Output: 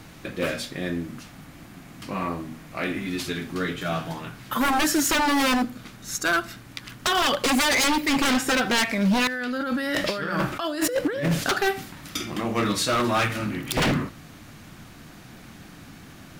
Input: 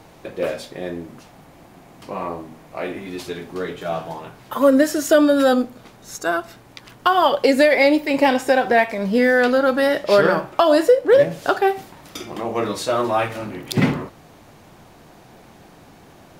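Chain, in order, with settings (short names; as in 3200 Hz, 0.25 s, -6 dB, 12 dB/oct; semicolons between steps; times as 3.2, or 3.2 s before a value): band shelf 610 Hz -9.5 dB; 9.27–11.44 negative-ratio compressor -30 dBFS, ratio -1; wavefolder -20 dBFS; reverb RT60 0.20 s, pre-delay 69 ms, DRR 25.5 dB; gain +4 dB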